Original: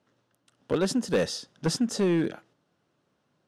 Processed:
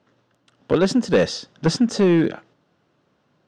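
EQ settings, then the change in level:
moving average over 4 samples
+8.0 dB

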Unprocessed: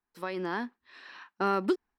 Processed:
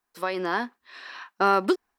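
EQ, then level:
parametric band 750 Hz +9.5 dB 2.2 octaves
high-shelf EQ 2,400 Hz +11.5 dB
notch filter 880 Hz, Q 12
−1.0 dB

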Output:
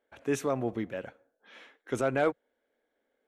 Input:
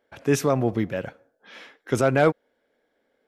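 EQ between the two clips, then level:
thirty-one-band graphic EQ 100 Hz −9 dB, 160 Hz −11 dB, 5,000 Hz −8 dB, 12,500 Hz −6 dB
−7.5 dB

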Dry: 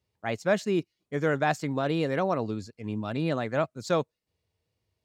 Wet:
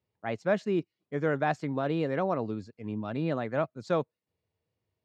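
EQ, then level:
high-pass filter 97 Hz
high-frequency loss of the air 53 metres
high-shelf EQ 3,500 Hz −9.5 dB
−1.5 dB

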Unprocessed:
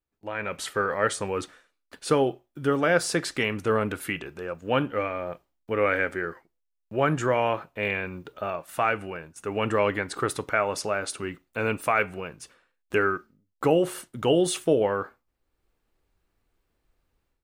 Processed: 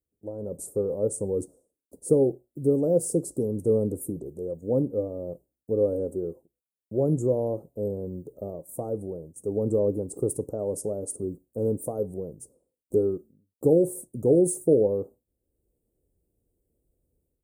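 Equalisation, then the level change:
high-pass filter 47 Hz
elliptic band-stop filter 520–8,600 Hz, stop band 80 dB
dynamic equaliser 650 Hz, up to −5 dB, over −48 dBFS, Q 6.9
+3.0 dB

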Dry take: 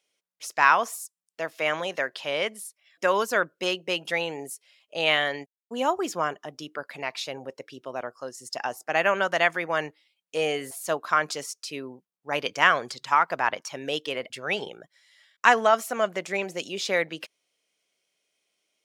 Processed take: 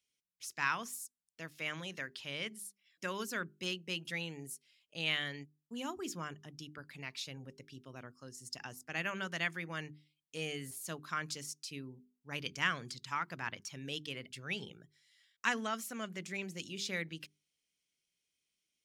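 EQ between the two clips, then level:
guitar amp tone stack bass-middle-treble 6-0-2
low-shelf EQ 300 Hz +10.5 dB
mains-hum notches 50/100/150/200/250/300/350/400 Hz
+7.0 dB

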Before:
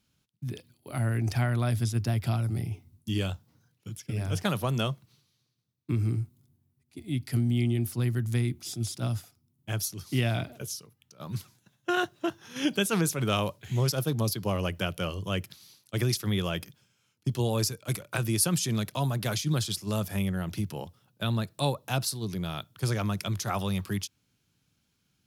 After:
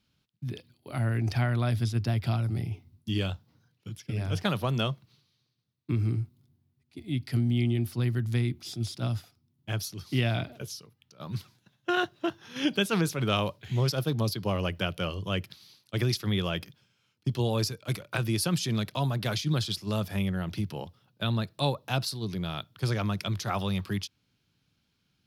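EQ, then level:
high shelf with overshoot 5,700 Hz −6.5 dB, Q 1.5
0.0 dB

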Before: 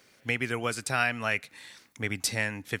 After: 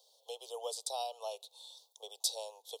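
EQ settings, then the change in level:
Butterworth high-pass 460 Hz 72 dB per octave
elliptic band-stop filter 900–3,600 Hz, stop band 50 dB
parametric band 3,500 Hz +6.5 dB 0.51 octaves
−4.0 dB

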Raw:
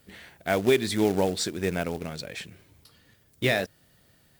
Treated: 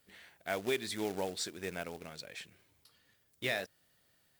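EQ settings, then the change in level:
low-shelf EQ 400 Hz −9.5 dB
−8.0 dB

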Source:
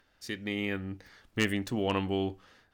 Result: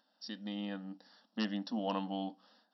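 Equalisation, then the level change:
linear-phase brick-wall band-pass 190–5,700 Hz
parametric band 1,300 Hz −10 dB 1.3 octaves
phaser with its sweep stopped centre 940 Hz, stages 4
+3.5 dB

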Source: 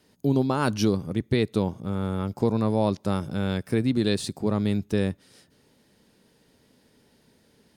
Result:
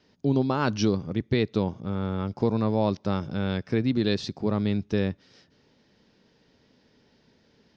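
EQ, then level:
elliptic low-pass filter 5,800 Hz, stop band 70 dB
0.0 dB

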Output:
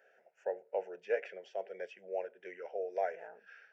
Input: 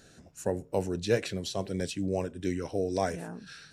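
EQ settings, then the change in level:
Gaussian smoothing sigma 2.5 samples
high-pass filter 400 Hz 24 dB per octave
phaser with its sweep stopped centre 1,100 Hz, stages 6
−2.5 dB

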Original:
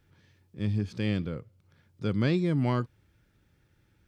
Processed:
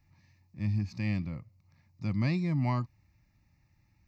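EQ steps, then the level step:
phaser with its sweep stopped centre 2,200 Hz, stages 8
0.0 dB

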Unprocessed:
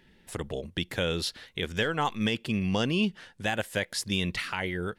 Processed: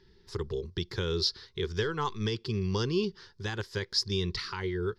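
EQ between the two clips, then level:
drawn EQ curve 110 Hz 0 dB, 280 Hz −14 dB, 390 Hz +5 dB, 630 Hz −24 dB, 1,000 Hz −3 dB, 2,700 Hz −15 dB, 5,000 Hz +6 dB, 8,500 Hz −21 dB
+3.0 dB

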